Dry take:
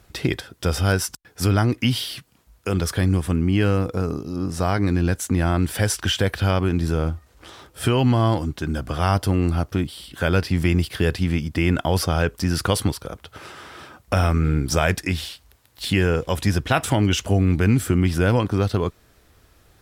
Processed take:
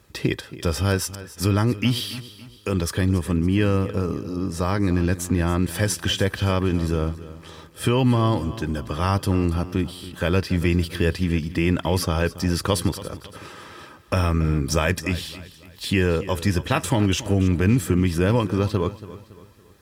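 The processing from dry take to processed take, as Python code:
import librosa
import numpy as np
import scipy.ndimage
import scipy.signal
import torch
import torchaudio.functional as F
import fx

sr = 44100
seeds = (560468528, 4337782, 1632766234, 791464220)

p1 = fx.notch_comb(x, sr, f0_hz=720.0)
y = p1 + fx.echo_feedback(p1, sr, ms=281, feedback_pct=41, wet_db=-16, dry=0)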